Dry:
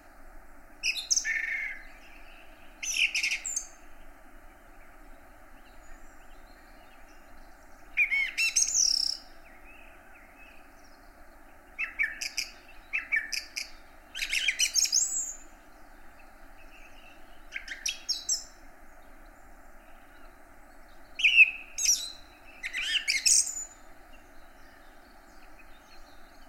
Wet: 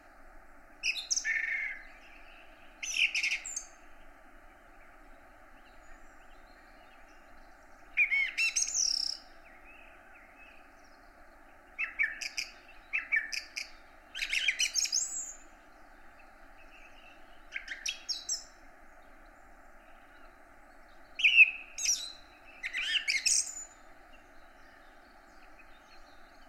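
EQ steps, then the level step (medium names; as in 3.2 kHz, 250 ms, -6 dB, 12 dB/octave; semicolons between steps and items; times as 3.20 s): low-pass 3.7 kHz 6 dB/octave; bass shelf 440 Hz -6 dB; band-stop 960 Hz, Q 12; 0.0 dB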